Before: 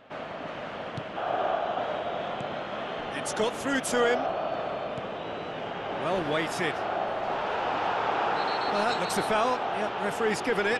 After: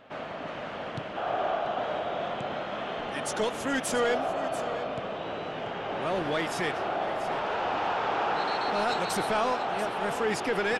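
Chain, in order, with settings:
soft clipping −19 dBFS, distortion −19 dB
single-tap delay 687 ms −12.5 dB

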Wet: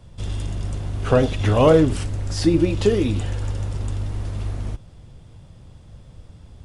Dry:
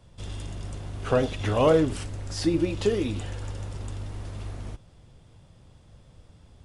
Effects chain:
low-shelf EQ 230 Hz +5.5 dB
level +4.5 dB

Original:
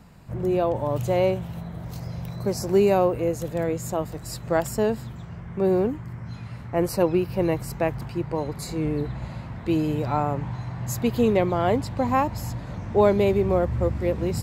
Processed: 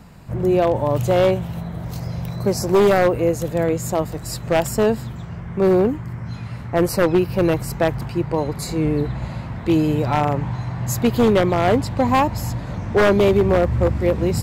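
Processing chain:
wave folding −14.5 dBFS
level +6 dB

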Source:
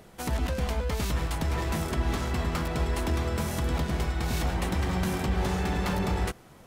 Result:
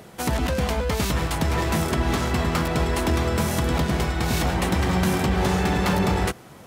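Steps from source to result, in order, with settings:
high-pass filter 75 Hz
level +7.5 dB

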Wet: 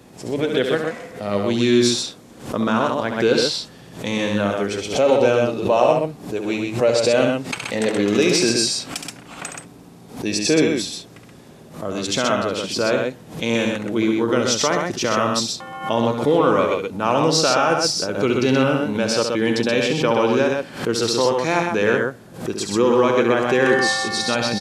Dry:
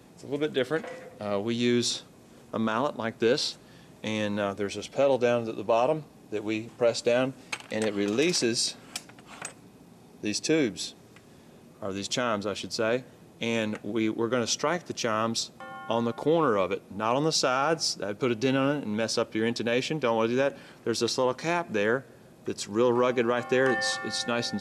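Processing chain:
multi-tap delay 69/127 ms −6.5/−4 dB
background raised ahead of every attack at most 120 dB per second
level +6 dB

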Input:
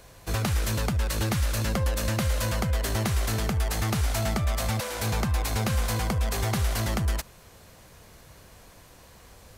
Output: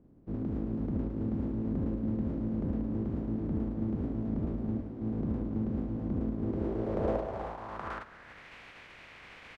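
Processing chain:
compressing power law on the bin magnitudes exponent 0.24
multi-tap delay 77/256/316/824 ms −11/−12.5/−12/−11 dB
low-pass filter sweep 260 Hz → 2,300 Hz, 0:06.37–0:08.52

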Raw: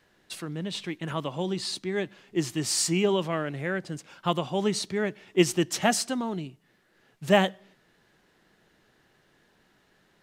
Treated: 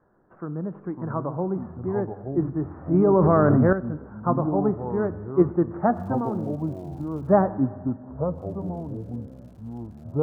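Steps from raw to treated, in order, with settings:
Butterworth low-pass 1,400 Hz 48 dB per octave
four-comb reverb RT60 1.8 s, combs from 26 ms, DRR 15 dB
0:05.93–0:07.32: surface crackle 210 per second −50 dBFS
delay with pitch and tempo change per echo 412 ms, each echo −5 semitones, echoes 3, each echo −6 dB
0:02.94–0:03.73: envelope flattener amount 100%
level +3 dB

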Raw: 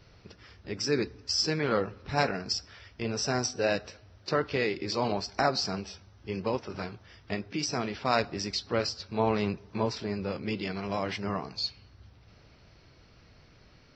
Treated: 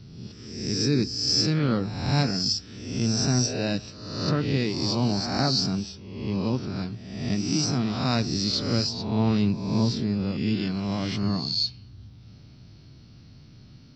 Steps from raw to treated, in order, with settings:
peak hold with a rise ahead of every peak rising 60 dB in 1.01 s
octave-band graphic EQ 125/250/500/1,000/2,000/4,000 Hz +10/+8/−7/−4/−7/+4 dB

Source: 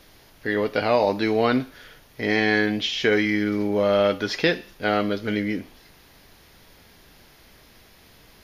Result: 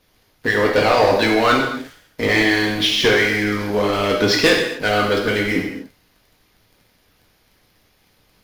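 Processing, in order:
harmonic and percussive parts rebalanced harmonic −15 dB
leveller curve on the samples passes 3
reverb whose tail is shaped and stops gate 300 ms falling, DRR −0.5 dB

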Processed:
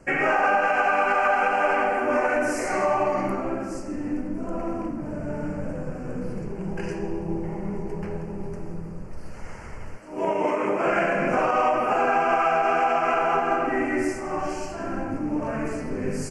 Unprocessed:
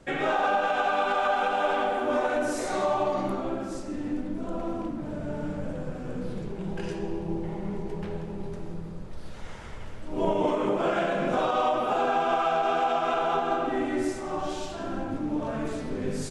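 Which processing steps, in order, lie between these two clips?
Butterworth band-reject 3,600 Hz, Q 1.8
dynamic equaliser 2,100 Hz, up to +8 dB, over −47 dBFS, Q 1.4
0:09.96–0:10.86: high-pass filter 510 Hz → 220 Hz 6 dB per octave
level +2.5 dB

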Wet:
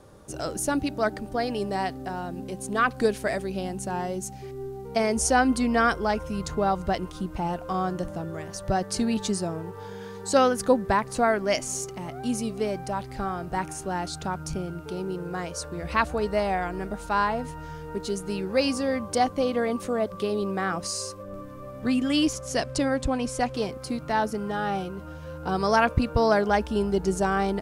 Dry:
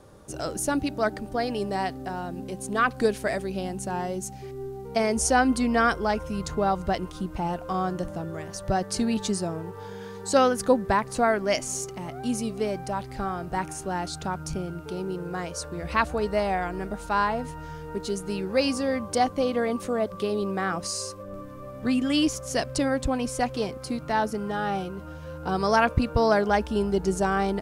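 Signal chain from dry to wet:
0:22.33–0:23.55: low-pass filter 11,000 Hz 12 dB per octave

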